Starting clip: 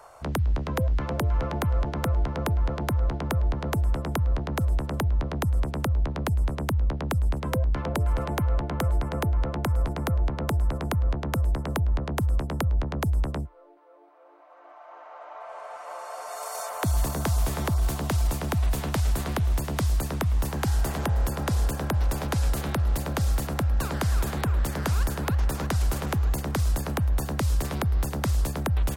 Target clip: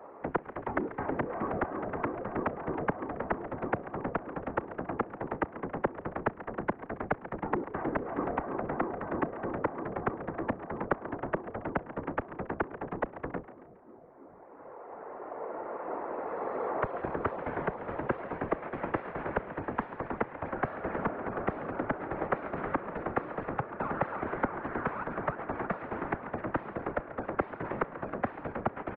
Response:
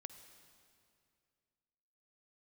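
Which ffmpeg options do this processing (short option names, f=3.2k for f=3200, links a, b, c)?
-filter_complex "[0:a]highpass=f=380:t=q:w=0.5412,highpass=f=380:t=q:w=1.307,lowpass=f=2.2k:t=q:w=0.5176,lowpass=f=2.2k:t=q:w=0.7071,lowpass=f=2.2k:t=q:w=1.932,afreqshift=-200,afftfilt=real='hypot(re,im)*cos(2*PI*random(0))':imag='hypot(re,im)*sin(2*PI*random(1))':win_size=512:overlap=0.75,asplit=5[a][b][c][d][e];[b]adelay=138,afreqshift=71,volume=-14.5dB[f];[c]adelay=276,afreqshift=142,volume=-22.5dB[g];[d]adelay=414,afreqshift=213,volume=-30.4dB[h];[e]adelay=552,afreqshift=284,volume=-38.4dB[i];[a][f][g][h][i]amix=inputs=5:normalize=0,volume=7.5dB"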